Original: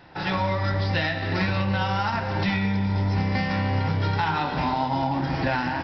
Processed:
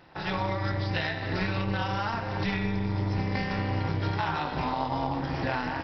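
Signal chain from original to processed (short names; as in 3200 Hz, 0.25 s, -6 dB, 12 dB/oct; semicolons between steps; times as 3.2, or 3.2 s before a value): AM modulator 220 Hz, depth 60%; gain -1.5 dB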